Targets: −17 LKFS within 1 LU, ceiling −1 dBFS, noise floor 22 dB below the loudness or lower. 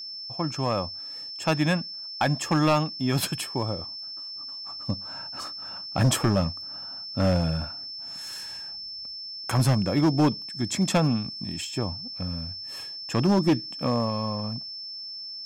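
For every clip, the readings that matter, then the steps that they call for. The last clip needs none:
share of clipped samples 1.0%; peaks flattened at −15.5 dBFS; interfering tone 5,300 Hz; level of the tone −35 dBFS; integrated loudness −27.5 LKFS; sample peak −15.5 dBFS; target loudness −17.0 LKFS
→ clipped peaks rebuilt −15.5 dBFS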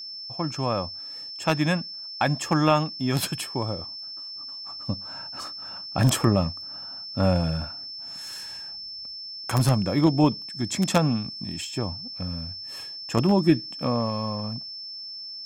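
share of clipped samples 0.0%; interfering tone 5,300 Hz; level of the tone −35 dBFS
→ notch filter 5,300 Hz, Q 30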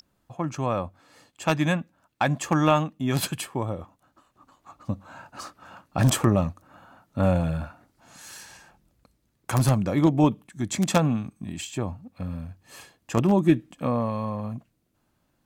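interfering tone none found; integrated loudness −25.5 LKFS; sample peak −6.0 dBFS; target loudness −17.0 LKFS
→ level +8.5 dB
brickwall limiter −1 dBFS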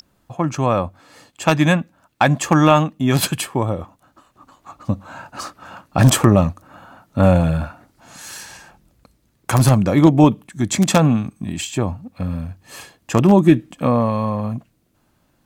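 integrated loudness −17.5 LKFS; sample peak −1.0 dBFS; background noise floor −63 dBFS

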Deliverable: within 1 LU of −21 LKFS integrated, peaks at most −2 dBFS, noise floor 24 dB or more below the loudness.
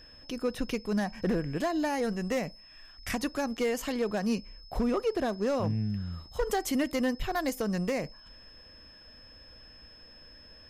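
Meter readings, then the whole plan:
share of clipped samples 1.0%; peaks flattened at −22.0 dBFS; interfering tone 5,200 Hz; level of the tone −52 dBFS; integrated loudness −31.5 LKFS; sample peak −22.0 dBFS; target loudness −21.0 LKFS
→ clipped peaks rebuilt −22 dBFS
notch filter 5,200 Hz, Q 30
level +10.5 dB

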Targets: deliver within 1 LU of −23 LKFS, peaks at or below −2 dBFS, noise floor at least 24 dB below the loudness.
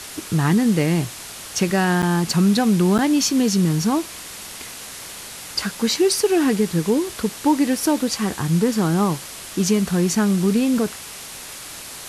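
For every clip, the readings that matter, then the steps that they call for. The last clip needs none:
number of dropouts 2; longest dropout 7.7 ms; background noise floor −36 dBFS; target noise floor −44 dBFS; integrated loudness −19.5 LKFS; sample peak −7.0 dBFS; target loudness −23.0 LKFS
→ repair the gap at 0:02.02/0:02.98, 7.7 ms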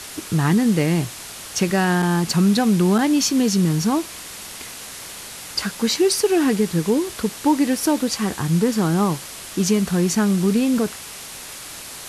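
number of dropouts 0; background noise floor −36 dBFS; target noise floor −44 dBFS
→ broadband denoise 8 dB, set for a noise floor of −36 dBFS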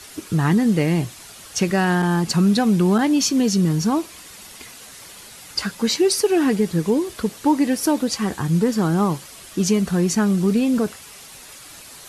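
background noise floor −42 dBFS; target noise floor −44 dBFS
→ broadband denoise 6 dB, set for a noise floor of −42 dBFS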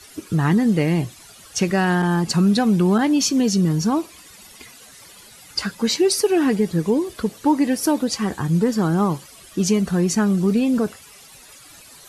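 background noise floor −45 dBFS; integrated loudness −20.0 LKFS; sample peak −7.5 dBFS; target loudness −23.0 LKFS
→ level −3 dB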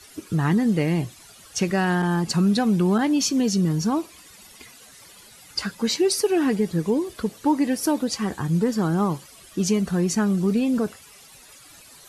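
integrated loudness −23.0 LKFS; sample peak −10.5 dBFS; background noise floor −48 dBFS

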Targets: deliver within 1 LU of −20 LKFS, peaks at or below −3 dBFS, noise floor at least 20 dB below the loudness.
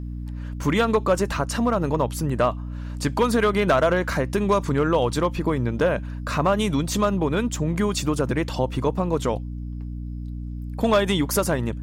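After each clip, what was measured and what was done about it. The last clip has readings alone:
share of clipped samples 0.4%; peaks flattened at −11.5 dBFS; mains hum 60 Hz; hum harmonics up to 300 Hz; level of the hum −29 dBFS; integrated loudness −23.0 LKFS; sample peak −11.5 dBFS; target loudness −20.0 LKFS
→ clipped peaks rebuilt −11.5 dBFS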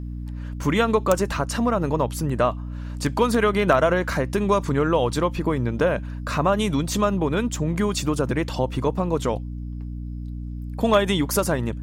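share of clipped samples 0.0%; mains hum 60 Hz; hum harmonics up to 300 Hz; level of the hum −29 dBFS
→ mains-hum notches 60/120/180/240/300 Hz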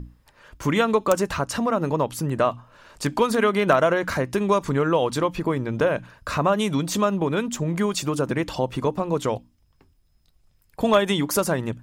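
mains hum none found; integrated loudness −23.0 LKFS; sample peak −3.5 dBFS; target loudness −20.0 LKFS
→ level +3 dB
brickwall limiter −3 dBFS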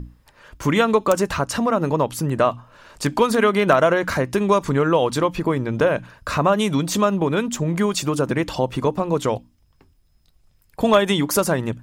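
integrated loudness −20.5 LKFS; sample peak −3.0 dBFS; background noise floor −60 dBFS

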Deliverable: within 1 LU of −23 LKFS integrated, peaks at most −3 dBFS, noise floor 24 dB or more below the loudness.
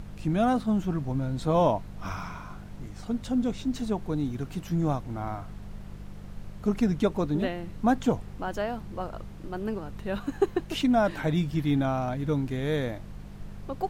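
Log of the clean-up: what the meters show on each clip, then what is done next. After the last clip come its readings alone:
mains hum 50 Hz; hum harmonics up to 200 Hz; level of the hum −42 dBFS; background noise floor −43 dBFS; target noise floor −53 dBFS; integrated loudness −28.5 LKFS; sample peak −12.0 dBFS; target loudness −23.0 LKFS
→ hum removal 50 Hz, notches 4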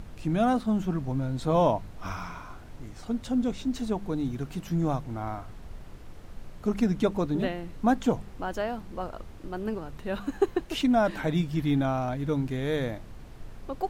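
mains hum none found; background noise floor −45 dBFS; target noise floor −53 dBFS
→ noise reduction from a noise print 8 dB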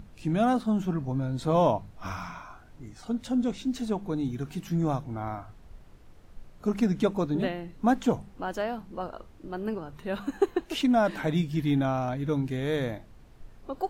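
background noise floor −52 dBFS; target noise floor −53 dBFS
→ noise reduction from a noise print 6 dB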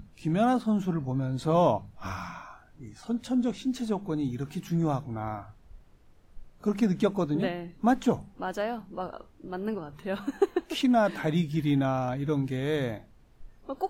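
background noise floor −57 dBFS; integrated loudness −29.0 LKFS; sample peak −12.0 dBFS; target loudness −23.0 LKFS
→ level +6 dB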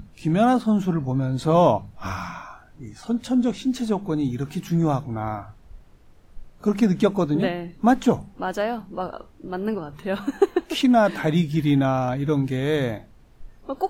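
integrated loudness −23.0 LKFS; sample peak −6.0 dBFS; background noise floor −51 dBFS

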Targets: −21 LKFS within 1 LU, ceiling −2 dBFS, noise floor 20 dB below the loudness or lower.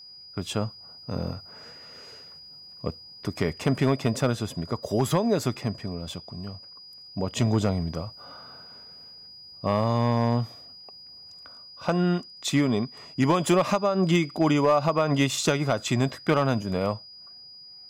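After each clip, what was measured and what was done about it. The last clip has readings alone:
share of clipped samples 0.3%; peaks flattened at −13.0 dBFS; interfering tone 4,900 Hz; level of the tone −44 dBFS; integrated loudness −26.0 LKFS; sample peak −13.0 dBFS; target loudness −21.0 LKFS
→ clipped peaks rebuilt −13 dBFS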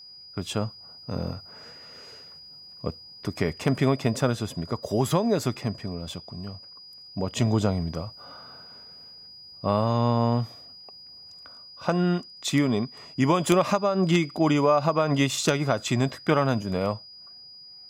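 share of clipped samples 0.0%; interfering tone 4,900 Hz; level of the tone −44 dBFS
→ notch filter 4,900 Hz, Q 30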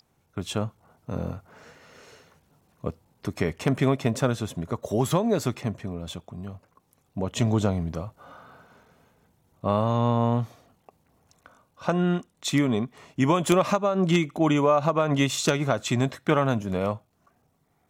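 interfering tone none found; integrated loudness −25.5 LKFS; sample peak −4.0 dBFS; target loudness −21.0 LKFS
→ level +4.5 dB
brickwall limiter −2 dBFS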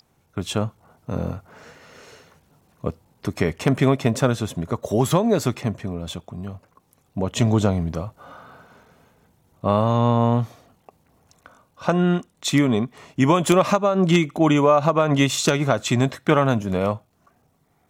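integrated loudness −21.0 LKFS; sample peak −2.0 dBFS; background noise floor −64 dBFS

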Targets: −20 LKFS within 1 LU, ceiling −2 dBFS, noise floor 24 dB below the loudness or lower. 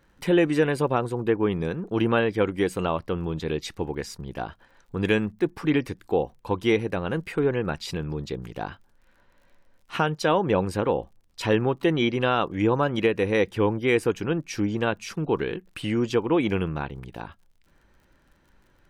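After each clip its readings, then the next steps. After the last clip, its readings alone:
crackle rate 40 per second; integrated loudness −25.5 LKFS; sample peak −9.5 dBFS; target loudness −20.0 LKFS
→ click removal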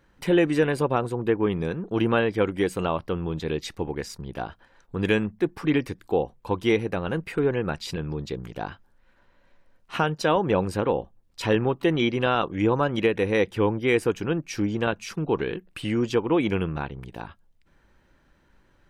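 crackle rate 0.11 per second; integrated loudness −25.5 LKFS; sample peak −9.5 dBFS; target loudness −20.0 LKFS
→ level +5.5 dB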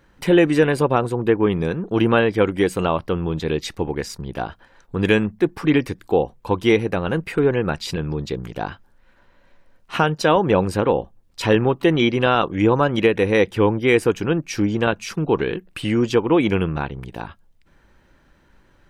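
integrated loudness −20.0 LKFS; sample peak −4.0 dBFS; background noise floor −57 dBFS

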